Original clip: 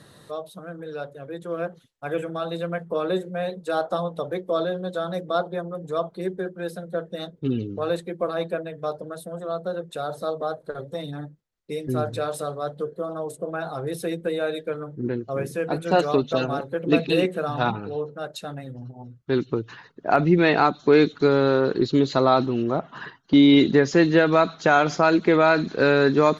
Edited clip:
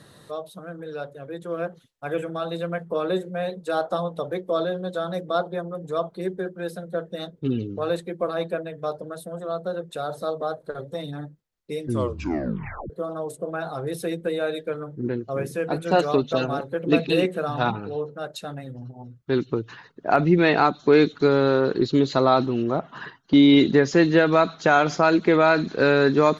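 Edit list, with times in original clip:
0:11.84: tape stop 1.06 s

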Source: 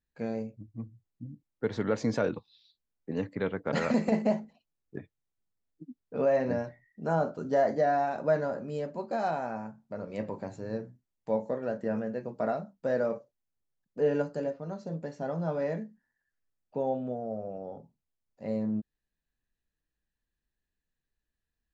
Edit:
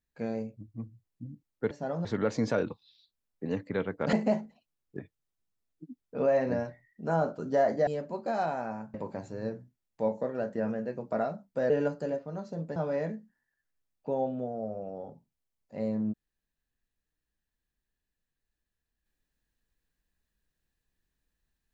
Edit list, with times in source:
0:03.79–0:04.12: remove
0:07.86–0:08.72: remove
0:09.79–0:10.22: remove
0:12.98–0:14.04: remove
0:15.10–0:15.44: move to 0:01.71

